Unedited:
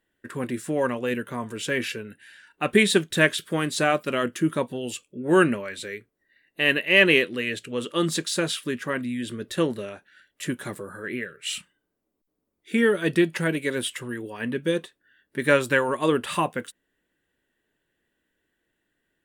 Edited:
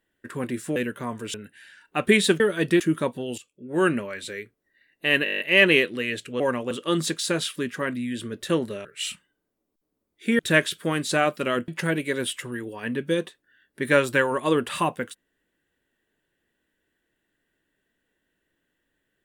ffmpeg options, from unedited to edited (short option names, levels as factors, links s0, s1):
-filter_complex "[0:a]asplit=19[s0][s1][s2][s3][s4][s5][s6][s7][s8][s9][s10][s11][s12][s13][s14][s15][s16][s17][s18];[s0]atrim=end=0.762[s19];[s1]atrim=start=1.068:end=1.652[s20];[s2]atrim=start=1.998:end=3.062[s21];[s3]atrim=start=12.848:end=13.252[s22];[s4]atrim=start=4.348:end=4.93,asetpts=PTS-STARTPTS,afade=t=out:st=0.578:d=0.004:c=hsin:silence=0.211349[s23];[s5]atrim=start=4.93:end=6.812,asetpts=PTS-STARTPTS,afade=t=in:d=0.77:silence=0.211349[s24];[s6]atrim=start=6.788:end=6.812[s25];[s7]atrim=start=6.788:end=6.812[s26];[s8]atrim=start=6.788:end=6.812[s27];[s9]atrim=start=6.788:end=6.812[s28];[s10]atrim=start=6.788:end=6.812[s29];[s11]atrim=start=6.788:end=6.812[s30];[s12]atrim=start=6.788:end=6.812[s31];[s13]atrim=start=6.788:end=7.792[s32];[s14]atrim=start=0.758:end=1.072[s33];[s15]atrim=start=7.788:end=9.932[s34];[s16]atrim=start=11.308:end=12.852[s35];[s17]atrim=start=3.058:end=4.352[s36];[s18]atrim=start=13.248[s37];[s19][s20]acrossfade=d=0.004:c1=hsin:c2=hsin[s38];[s38][s21]acrossfade=d=0.004:c1=hsin:c2=hsin[s39];[s39][s22]acrossfade=d=0.004:c1=hsin:c2=hsin[s40];[s23][s24]concat=n=2:v=0:a=1[s41];[s40][s41]acrossfade=d=0.004:c1=hsin:c2=hsin[s42];[s42][s25]acrossfade=d=0.004:c1=hsin:c2=hsin[s43];[s43][s26]acrossfade=d=0.004:c1=hsin:c2=hsin[s44];[s44][s27]acrossfade=d=0.004:c1=hsin:c2=hsin[s45];[s45][s28]acrossfade=d=0.004:c1=hsin:c2=hsin[s46];[s46][s29]acrossfade=d=0.004:c1=hsin:c2=hsin[s47];[s47][s30]acrossfade=d=0.004:c1=hsin:c2=hsin[s48];[s48][s31]acrossfade=d=0.004:c1=hsin:c2=hsin[s49];[s49][s32]acrossfade=d=0.004:c1=hsin:c2=hsin[s50];[s50][s33]acrossfade=d=0.004:c1=hsin:c2=hsin[s51];[s51][s34]acrossfade=d=0.004:c1=hsin:c2=hsin[s52];[s52][s35]acrossfade=d=0.004:c1=hsin:c2=hsin[s53];[s53][s36]acrossfade=d=0.004:c1=hsin:c2=hsin[s54];[s54][s37]acrossfade=d=0.004:c1=hsin:c2=hsin"